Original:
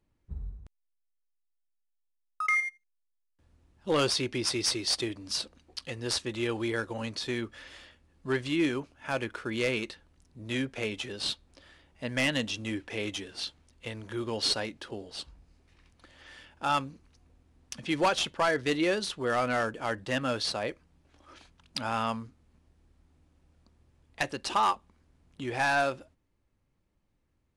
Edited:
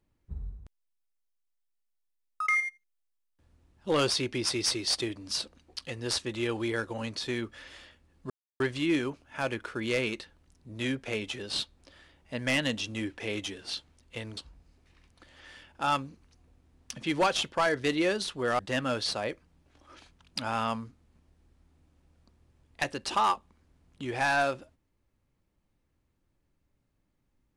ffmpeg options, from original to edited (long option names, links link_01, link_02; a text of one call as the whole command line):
ffmpeg -i in.wav -filter_complex "[0:a]asplit=4[link_01][link_02][link_03][link_04];[link_01]atrim=end=8.3,asetpts=PTS-STARTPTS,afade=type=out:start_time=8.296:duration=0.004:curve=hsin,apad=pad_dur=0.3[link_05];[link_02]atrim=start=8.3:end=14.072,asetpts=PTS-STARTPTS,afade=type=in:duration=0.004:curve=hsin[link_06];[link_03]atrim=start=15.188:end=19.412[link_07];[link_04]atrim=start=19.978[link_08];[link_05][link_06]concat=n=2:v=0:a=1[link_09];[link_09][link_07]acrossfade=duration=0.004:curve1=hsin:curve2=hsin[link_10];[link_10][link_08]acrossfade=duration=0.004:curve1=hsin:curve2=hsin" out.wav